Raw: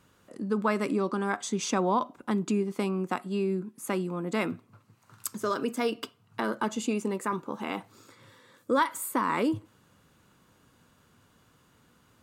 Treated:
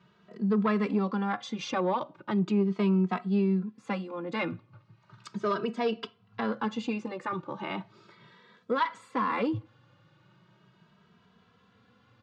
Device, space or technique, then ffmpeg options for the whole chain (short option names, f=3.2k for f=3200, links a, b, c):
barber-pole flanger into a guitar amplifier: -filter_complex "[0:a]asplit=2[a][b];[b]adelay=2.7,afreqshift=0.37[c];[a][c]amix=inputs=2:normalize=1,asoftclip=type=tanh:threshold=-21dB,highpass=110,equalizer=f=120:t=q:w=4:g=7,equalizer=f=190:t=q:w=4:g=6,equalizer=f=270:t=q:w=4:g=-7,lowpass=f=4.5k:w=0.5412,lowpass=f=4.5k:w=1.3066,volume=3dB"